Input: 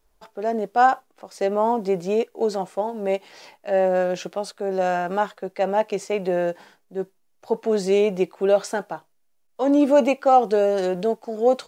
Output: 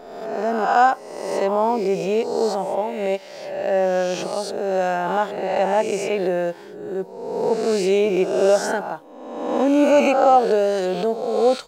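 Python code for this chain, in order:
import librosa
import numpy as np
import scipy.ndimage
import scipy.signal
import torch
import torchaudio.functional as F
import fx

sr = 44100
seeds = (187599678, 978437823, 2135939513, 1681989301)

y = fx.spec_swells(x, sr, rise_s=1.2)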